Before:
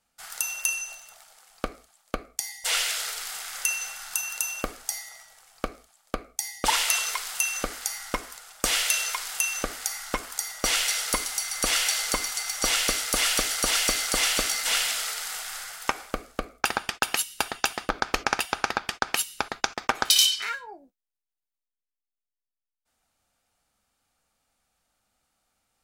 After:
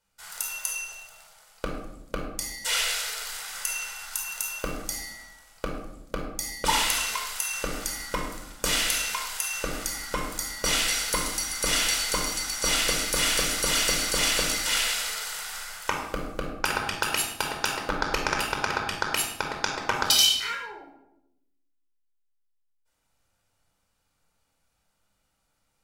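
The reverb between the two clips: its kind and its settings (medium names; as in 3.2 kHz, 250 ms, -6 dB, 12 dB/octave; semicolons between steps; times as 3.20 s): simulated room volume 2400 m³, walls furnished, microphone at 4.8 m; trim -4 dB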